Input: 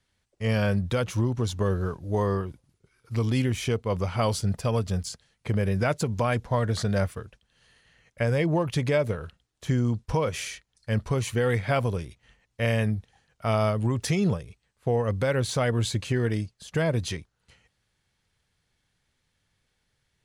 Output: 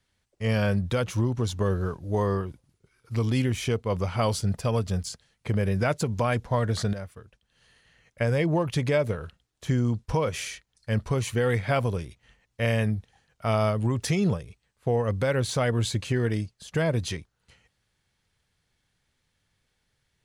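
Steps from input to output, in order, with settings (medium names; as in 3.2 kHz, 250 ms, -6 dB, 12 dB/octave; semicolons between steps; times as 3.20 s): 6.93–8.21 s: compression 1.5:1, threshold -55 dBFS, peak gain reduction 12 dB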